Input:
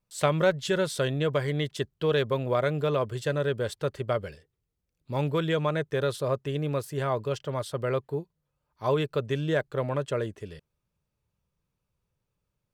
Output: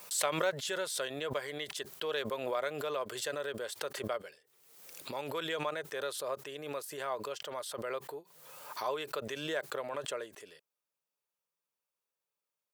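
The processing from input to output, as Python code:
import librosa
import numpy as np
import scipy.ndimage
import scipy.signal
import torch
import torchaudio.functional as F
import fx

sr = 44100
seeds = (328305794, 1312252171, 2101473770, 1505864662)

y = scipy.signal.sosfilt(scipy.signal.butter(2, 550.0, 'highpass', fs=sr, output='sos'), x)
y = fx.high_shelf(y, sr, hz=7600.0, db=9.0)
y = fx.pre_swell(y, sr, db_per_s=52.0)
y = y * 10.0 ** (-6.5 / 20.0)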